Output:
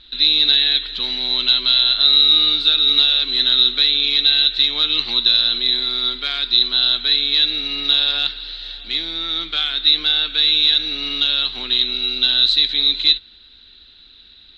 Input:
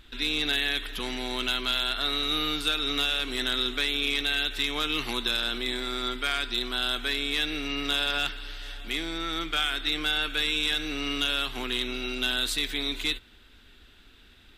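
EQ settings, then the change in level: synth low-pass 4000 Hz, resonance Q 16; -2.0 dB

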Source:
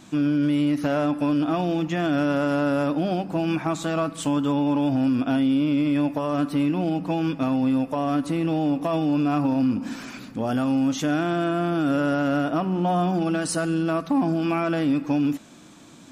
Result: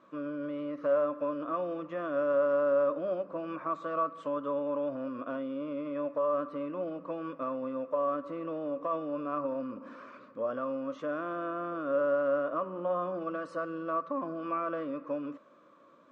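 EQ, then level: double band-pass 790 Hz, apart 1 oct; air absorption 62 m; +2.0 dB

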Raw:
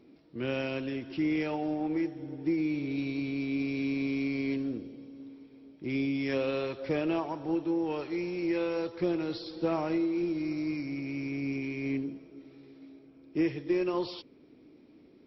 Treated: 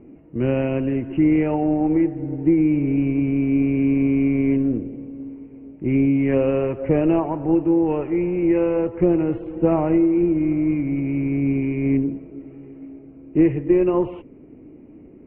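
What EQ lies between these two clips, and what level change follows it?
rippled Chebyshev low-pass 2900 Hz, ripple 3 dB; tilt -3.5 dB/oct; +8.5 dB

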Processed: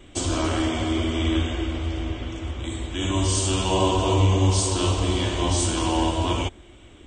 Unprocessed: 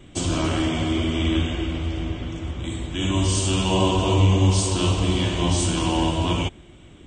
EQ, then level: bell 160 Hz -12 dB 0.78 oct; dynamic EQ 2700 Hz, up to -4 dB, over -43 dBFS, Q 2.4; +1.0 dB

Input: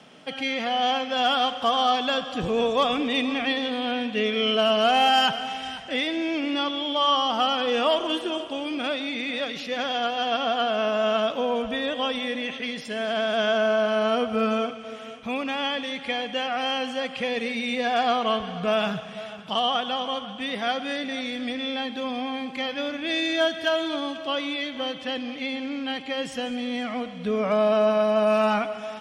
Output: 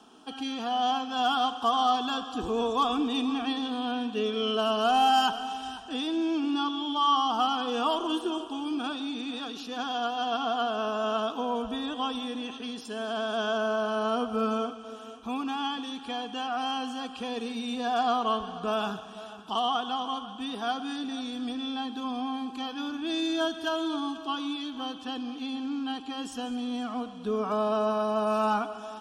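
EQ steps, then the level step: bell 4600 Hz -2.5 dB; fixed phaser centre 560 Hz, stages 6; 0.0 dB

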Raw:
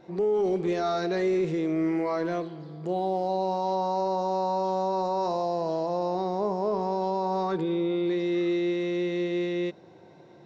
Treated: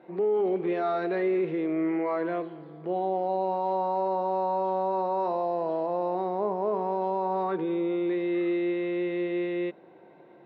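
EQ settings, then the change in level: HPF 230 Hz 12 dB/oct; LPF 2900 Hz 24 dB/oct; 0.0 dB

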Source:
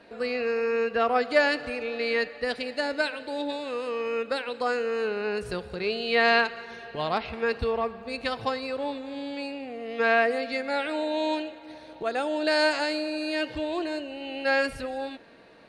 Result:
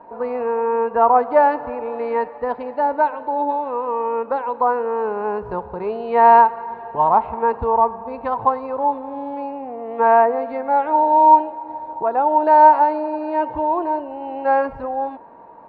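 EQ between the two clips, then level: synth low-pass 940 Hz, resonance Q 11; +3.0 dB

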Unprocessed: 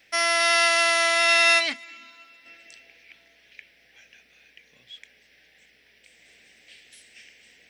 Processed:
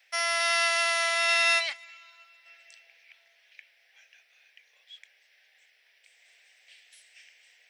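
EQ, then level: HPF 630 Hz 24 dB/oct; -5.0 dB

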